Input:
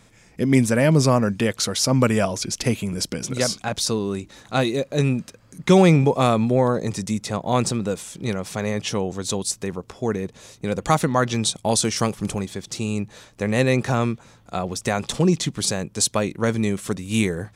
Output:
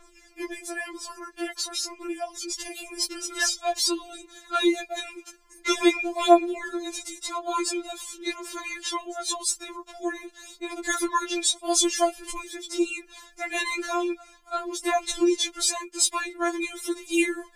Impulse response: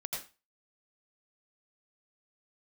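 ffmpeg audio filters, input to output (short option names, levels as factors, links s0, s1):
-filter_complex "[0:a]aphaser=in_gain=1:out_gain=1:delay=2.3:decay=0.57:speed=0.47:type=triangular,asettb=1/sr,asplit=3[s0][s1][s2];[s0]atrim=end=0.514[s3];[s1]atrim=start=0.51:end=2.76,asetpts=PTS-STARTPTS,afade=t=in:d=0.004:c=qsin,afade=t=out:st=2.246:d=0.004:c=qsin,acompressor=threshold=0.0501:ratio=3[s4];[s2]atrim=start=2.756[s5];[s3][s4]acrossfade=d=0.004:c1=hsin:c2=qsin[s6];[s6][s5]acrossfade=d=0.004:c1=qsin:c2=hsin,afftfilt=real='re*4*eq(mod(b,16),0)':imag='im*4*eq(mod(b,16),0)':win_size=2048:overlap=0.75"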